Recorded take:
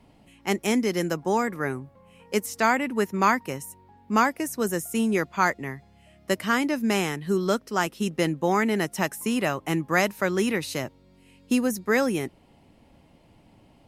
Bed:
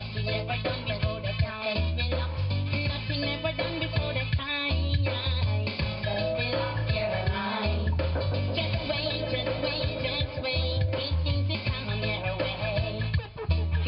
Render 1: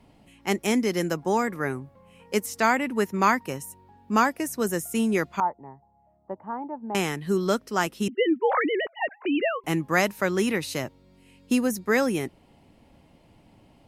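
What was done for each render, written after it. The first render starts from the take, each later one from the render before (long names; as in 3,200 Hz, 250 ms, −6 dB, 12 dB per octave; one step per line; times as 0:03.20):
0:03.46–0:04.37: notch filter 2,100 Hz
0:05.40–0:06.95: transistor ladder low-pass 920 Hz, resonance 80%
0:08.08–0:09.64: three sine waves on the formant tracks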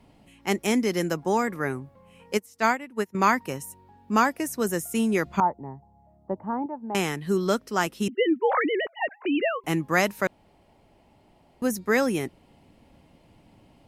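0:02.37–0:03.15: expander for the loud parts 2.5 to 1, over −30 dBFS
0:05.26–0:06.66: low-shelf EQ 450 Hz +10 dB
0:10.27–0:11.62: fill with room tone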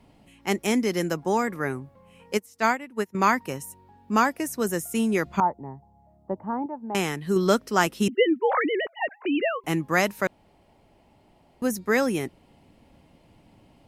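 0:07.36–0:08.25: clip gain +3.5 dB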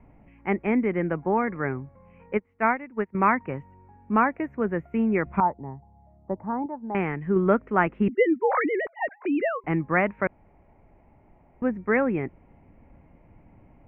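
elliptic low-pass filter 2,300 Hz, stop band 50 dB
low-shelf EQ 87 Hz +11.5 dB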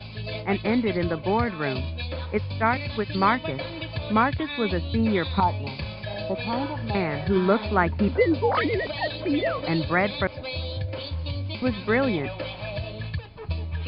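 mix in bed −3.5 dB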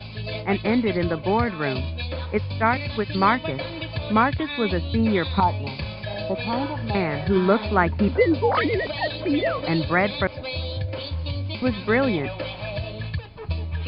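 level +2 dB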